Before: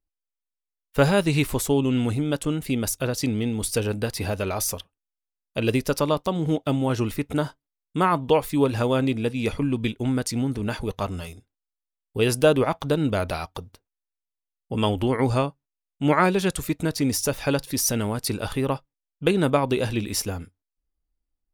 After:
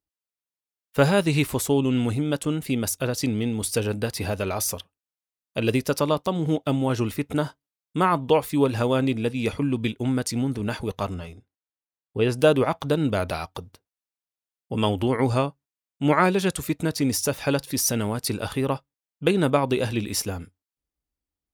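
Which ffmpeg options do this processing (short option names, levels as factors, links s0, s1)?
-filter_complex "[0:a]asettb=1/sr,asplit=3[s0][s1][s2];[s0]atrim=end=11.144[s3];[s1]atrim=start=11.14:end=12.39,asetpts=PTS-STARTPTS,afade=t=in:d=0.004:c=qsin,afade=t=out:st=1.246:d=0.004:c=qsin,aemphasis=mode=reproduction:type=75kf[s4];[s2]atrim=start=12.386[s5];[s3][s4]acrossfade=d=0.004:c1=hsin:c2=qsin[s6];[s6][s5]acrossfade=d=0.004:c1=qsin:c2=hsin,highpass=66"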